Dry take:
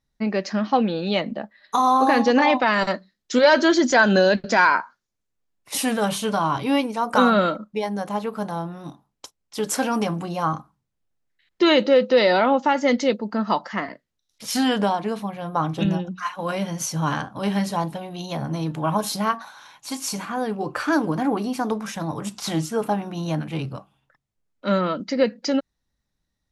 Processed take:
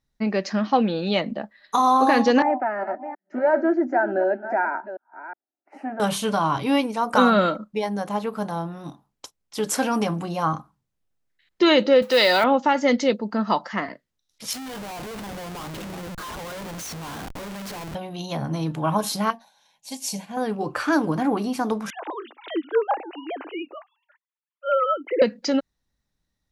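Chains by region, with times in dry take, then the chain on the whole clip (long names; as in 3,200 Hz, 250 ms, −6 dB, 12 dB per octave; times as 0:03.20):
0:02.42–0:06.00: delay that plays each chunk backwards 364 ms, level −12 dB + flat-topped band-pass 600 Hz, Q 0.73 + phaser with its sweep stopped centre 720 Hz, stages 8
0:12.02–0:12.44: mu-law and A-law mismatch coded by mu + spectral tilt +3 dB per octave
0:14.53–0:17.95: high-pass filter 400 Hz 6 dB per octave + downward compressor 3 to 1, threshold −31 dBFS + comparator with hysteresis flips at −41 dBFS
0:19.30–0:20.37: phaser with its sweep stopped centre 340 Hz, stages 6 + expander for the loud parts, over −50 dBFS
0:21.90–0:25.22: three sine waves on the formant tracks + Butterworth high-pass 300 Hz 72 dB per octave
whole clip: no processing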